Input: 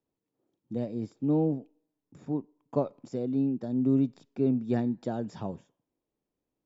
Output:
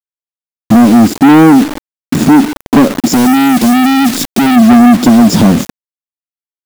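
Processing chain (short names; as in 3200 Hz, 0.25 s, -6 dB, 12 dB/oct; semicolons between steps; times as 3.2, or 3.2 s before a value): in parallel at +2 dB: compressor 10:1, threshold -37 dBFS, peak gain reduction 17 dB; on the sum: ten-band EQ 125 Hz -7 dB, 250 Hz +11 dB, 500 Hz -5 dB, 1000 Hz -6 dB, 2000 Hz -9 dB; companded quantiser 4-bit; soft clip -30.5 dBFS, distortion -4 dB; 3.13–4.56 high shelf 2300 Hz +10.5 dB; maximiser +35.5 dB; gain -1 dB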